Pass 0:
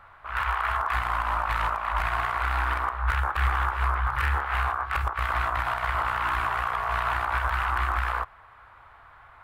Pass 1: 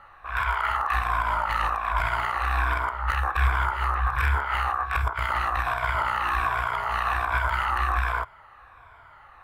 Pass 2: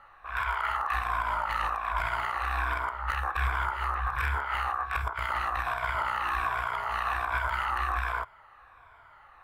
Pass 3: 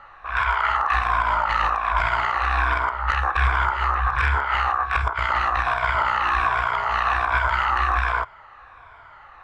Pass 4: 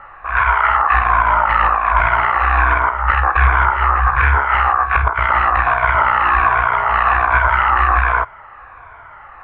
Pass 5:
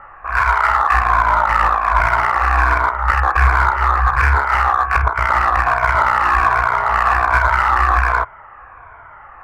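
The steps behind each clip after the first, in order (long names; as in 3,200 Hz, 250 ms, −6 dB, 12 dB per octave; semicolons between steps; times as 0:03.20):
rippled gain that drifts along the octave scale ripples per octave 1.7, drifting −1.3 Hz, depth 10 dB
parametric band 90 Hz −4 dB 2.9 octaves; level −4 dB
low-pass filter 6,900 Hz 24 dB per octave; level +8.5 dB
low-pass filter 2,500 Hz 24 dB per octave; level +7.5 dB
adaptive Wiener filter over 9 samples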